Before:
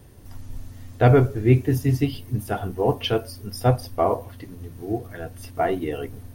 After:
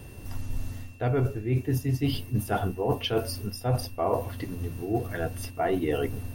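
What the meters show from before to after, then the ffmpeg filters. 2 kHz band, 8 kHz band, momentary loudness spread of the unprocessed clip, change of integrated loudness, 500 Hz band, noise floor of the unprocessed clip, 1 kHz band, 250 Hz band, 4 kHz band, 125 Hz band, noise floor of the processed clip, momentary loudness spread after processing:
−4.0 dB, 0.0 dB, 21 LU, −6.5 dB, −5.5 dB, −43 dBFS, −5.5 dB, −5.0 dB, −2.0 dB, −6.0 dB, −43 dBFS, 10 LU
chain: -af "areverse,acompressor=threshold=-27dB:ratio=12,areverse,aeval=exprs='val(0)+0.001*sin(2*PI*2700*n/s)':channel_layout=same,volume=4.5dB"

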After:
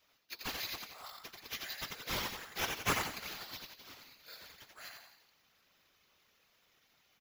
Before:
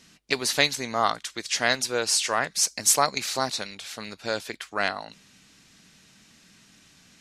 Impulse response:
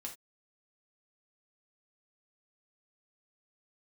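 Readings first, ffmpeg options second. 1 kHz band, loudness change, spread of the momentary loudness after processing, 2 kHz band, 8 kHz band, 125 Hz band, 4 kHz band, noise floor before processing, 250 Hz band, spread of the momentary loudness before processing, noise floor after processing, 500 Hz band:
−15.5 dB, −15.0 dB, 18 LU, −13.5 dB, −20.5 dB, −8.5 dB, −14.0 dB, −57 dBFS, −13.5 dB, 14 LU, −72 dBFS, −19.0 dB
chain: -filter_complex "[0:a]aderivative,asplit=7[link_01][link_02][link_03][link_04][link_05][link_06][link_07];[link_02]adelay=87,afreqshift=33,volume=-4dB[link_08];[link_03]adelay=174,afreqshift=66,volume=-10.6dB[link_09];[link_04]adelay=261,afreqshift=99,volume=-17.1dB[link_10];[link_05]adelay=348,afreqshift=132,volume=-23.7dB[link_11];[link_06]adelay=435,afreqshift=165,volume=-30.2dB[link_12];[link_07]adelay=522,afreqshift=198,volume=-36.8dB[link_13];[link_01][link_08][link_09][link_10][link_11][link_12][link_13]amix=inputs=7:normalize=0,acrusher=samples=5:mix=1:aa=0.000001,afftfilt=real='hypot(re,im)*cos(2*PI*random(0))':imag='hypot(re,im)*sin(2*PI*random(1))':win_size=512:overlap=0.75,volume=-6.5dB"

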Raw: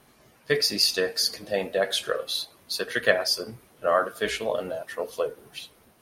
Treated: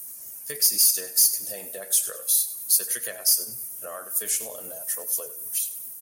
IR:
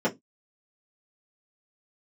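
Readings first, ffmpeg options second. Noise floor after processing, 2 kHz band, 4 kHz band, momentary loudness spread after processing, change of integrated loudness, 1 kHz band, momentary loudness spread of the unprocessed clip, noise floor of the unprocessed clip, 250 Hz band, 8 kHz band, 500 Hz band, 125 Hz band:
−40 dBFS, −13.0 dB, −3.5 dB, 15 LU, +4.0 dB, −15.0 dB, 12 LU, −59 dBFS, below −10 dB, +14.0 dB, −14.5 dB, below −10 dB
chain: -filter_complex "[0:a]acompressor=threshold=-36dB:ratio=2,aexciter=amount=11.5:drive=2.8:freq=5700,asoftclip=type=tanh:threshold=-14dB,crystalizer=i=2.5:c=0,asplit=2[link_01][link_02];[link_02]aecho=0:1:98|196|294:0.178|0.0605|0.0206[link_03];[link_01][link_03]amix=inputs=2:normalize=0,volume=-6.5dB"

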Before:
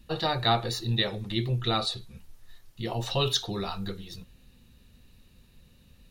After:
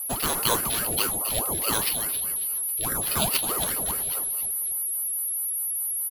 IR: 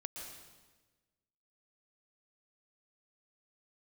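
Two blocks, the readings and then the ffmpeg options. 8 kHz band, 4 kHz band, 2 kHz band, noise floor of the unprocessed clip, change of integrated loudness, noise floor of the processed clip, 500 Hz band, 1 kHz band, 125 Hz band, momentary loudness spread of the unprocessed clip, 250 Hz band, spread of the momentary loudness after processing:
+21.5 dB, −1.0 dB, +3.5 dB, −58 dBFS, +4.5 dB, −29 dBFS, −1.5 dB, +0.5 dB, −8.0 dB, 13 LU, −2.0 dB, 3 LU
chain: -filter_complex "[0:a]highpass=frequency=290:poles=1,equalizer=frequency=410:width=1.5:gain=5.5,asplit=2[link_01][link_02];[link_02]acompressor=threshold=-40dB:ratio=6,volume=-2dB[link_03];[link_01][link_03]amix=inputs=2:normalize=0,acrusher=samples=6:mix=1:aa=0.000001,aeval=exprs='val(0)+0.0224*sin(2*PI*11000*n/s)':channel_layout=same,acrossover=split=620|1500[link_04][link_05][link_06];[link_06]crystalizer=i=1:c=0[link_07];[link_04][link_05][link_07]amix=inputs=3:normalize=0,aecho=1:1:272|544|816|1088:0.355|0.124|0.0435|0.0152,aeval=exprs='val(0)*sin(2*PI*570*n/s+570*0.65/4.8*sin(2*PI*4.8*n/s))':channel_layout=same"

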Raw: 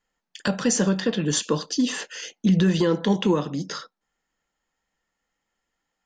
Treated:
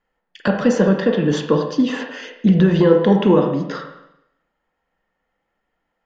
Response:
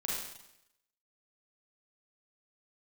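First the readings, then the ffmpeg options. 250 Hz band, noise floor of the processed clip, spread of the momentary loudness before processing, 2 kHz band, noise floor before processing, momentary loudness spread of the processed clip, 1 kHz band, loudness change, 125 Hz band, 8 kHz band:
+6.0 dB, −75 dBFS, 11 LU, +4.5 dB, −82 dBFS, 12 LU, +7.0 dB, +6.5 dB, +6.0 dB, below −10 dB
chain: -filter_complex "[0:a]lowpass=3000,asplit=2[link_01][link_02];[link_02]equalizer=frequency=600:width_type=o:width=1.2:gain=7.5[link_03];[1:a]atrim=start_sample=2205,lowpass=2700[link_04];[link_03][link_04]afir=irnorm=-1:irlink=0,volume=-7dB[link_05];[link_01][link_05]amix=inputs=2:normalize=0,volume=3dB"

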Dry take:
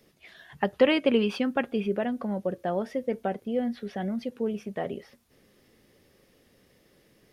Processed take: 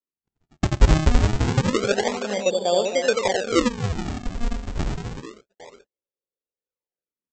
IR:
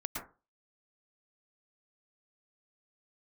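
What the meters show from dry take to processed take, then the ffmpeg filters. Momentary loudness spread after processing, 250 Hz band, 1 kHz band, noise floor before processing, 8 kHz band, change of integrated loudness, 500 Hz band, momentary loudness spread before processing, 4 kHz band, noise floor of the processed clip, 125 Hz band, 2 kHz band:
12 LU, +2.0 dB, +6.5 dB, −64 dBFS, can't be measured, +5.5 dB, +4.0 dB, 11 LU, +8.0 dB, below −85 dBFS, +16.5 dB, +6.0 dB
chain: -filter_complex "[0:a]equalizer=frequency=125:width_type=o:width=1:gain=-8,equalizer=frequency=250:width_type=o:width=1:gain=-4,equalizer=frequency=500:width_type=o:width=1:gain=11,equalizer=frequency=1000:width_type=o:width=1:gain=4,equalizer=frequency=2000:width_type=o:width=1:gain=-4,equalizer=frequency=4000:width_type=o:width=1:gain=-9,aecho=1:1:87|264|270|330|822:0.562|0.282|0.15|0.266|0.119,acrossover=split=520|680[link_01][link_02][link_03];[link_02]alimiter=limit=-20.5dB:level=0:latency=1:release=158[link_04];[link_01][link_04][link_03]amix=inputs=3:normalize=0,agate=range=-44dB:threshold=-47dB:ratio=16:detection=peak,bandreject=frequency=650:width=21,aresample=16000,acrusher=samples=19:mix=1:aa=0.000001:lfo=1:lforange=30.4:lforate=0.28,aresample=44100"

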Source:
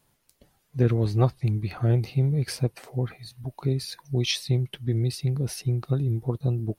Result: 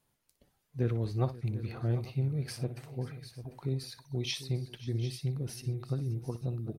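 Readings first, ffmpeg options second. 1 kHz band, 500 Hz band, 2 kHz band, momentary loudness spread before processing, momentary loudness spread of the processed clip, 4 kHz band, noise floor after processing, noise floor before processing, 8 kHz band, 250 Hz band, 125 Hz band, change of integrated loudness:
−8.5 dB, −8.5 dB, −8.5 dB, 8 LU, 8 LU, −8.5 dB, −78 dBFS, −69 dBFS, −8.5 dB, −8.5 dB, −8.5 dB, −8.5 dB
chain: -af "aecho=1:1:60|531|746|847:0.211|0.112|0.188|0.1,volume=-9dB"

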